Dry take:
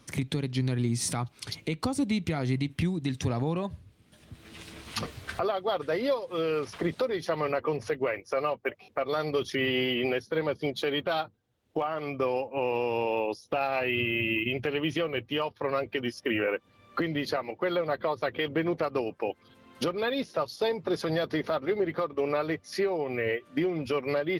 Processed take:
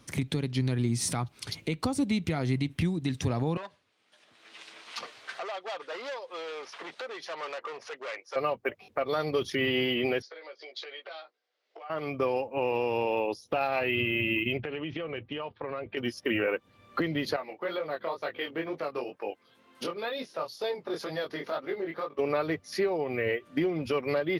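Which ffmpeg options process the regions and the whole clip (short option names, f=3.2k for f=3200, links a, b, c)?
-filter_complex "[0:a]asettb=1/sr,asplit=3[a][b][c];[a]atrim=end=3.574[d];[b]atrim=start=3.57:end=8.36,asetpts=PTS-STARTPTS,afade=t=in:d=0.004:c=qsin,afade=t=out:st=4.786:d=0.004:c=qsin,volume=30dB,asoftclip=hard,volume=-30dB,highpass=660,lowpass=6.2k[e];[c]atrim=start=8.356[f];[d][e]acrossfade=d=0.004:c1=hsin:c2=qsin[g];[g][f]acrossfade=d=0.004:c1=qsin:c2=hsin,asettb=1/sr,asplit=3[h][i][j];[h]atrim=end=10.224[k];[i]atrim=start=10.22:end=11.9,asetpts=PTS-STARTPTS,afade=t=in:d=0.004:c=qsin,afade=t=out:st=1.676:d=0.004:c=qsin,acompressor=threshold=-38dB:ratio=16:attack=3.2:release=140:knee=1:detection=peak,highpass=f=490:w=0.5412,highpass=f=490:w=1.3066,equalizer=f=910:t=q:w=4:g=-6,equalizer=f=2.1k:t=q:w=4:g=6,equalizer=f=4.7k:t=q:w=4:g=7,lowpass=f=6k:w=0.5412,lowpass=f=6k:w=1.3066,asplit=2[l][m];[m]adelay=16,volume=-5dB[n];[l][n]amix=inputs=2:normalize=0,atrim=end_sample=74088[o];[j]atrim=start=11.896[p];[k][o]acrossfade=d=0.004:c1=hsin:c2=qsin[q];[q][p]acrossfade=d=0.004:c1=qsin:c2=hsin,asettb=1/sr,asplit=3[r][s][t];[r]atrim=end=14.574[u];[s]atrim=start=14.57:end=15.97,asetpts=PTS-STARTPTS,afade=t=in:d=0.004:c=qsin,afade=t=out:st=1.396:d=0.004:c=qsin,lowpass=f=3.5k:w=0.5412,lowpass=f=3.5k:w=1.3066,acompressor=threshold=-31dB:ratio=6:attack=3.2:release=140:knee=1:detection=peak[v];[t]atrim=start=15.966[w];[u][v]acrossfade=d=0.004:c1=hsin:c2=qsin[x];[x][w]acrossfade=d=0.004:c1=qsin:c2=hsin,asettb=1/sr,asplit=3[y][z][aa];[y]atrim=end=17.364[ab];[z]atrim=start=17.36:end=22.19,asetpts=PTS-STARTPTS,afade=t=in:d=0.004:c=qsin,afade=t=out:st=4.826:d=0.004:c=qsin,highpass=f=380:p=1,flanger=delay=19.5:depth=5.1:speed=2.1[ac];[aa]atrim=start=22.186[ad];[ab][ac]acrossfade=d=0.004:c1=hsin:c2=qsin[ae];[ae][ad]acrossfade=d=0.004:c1=qsin:c2=hsin"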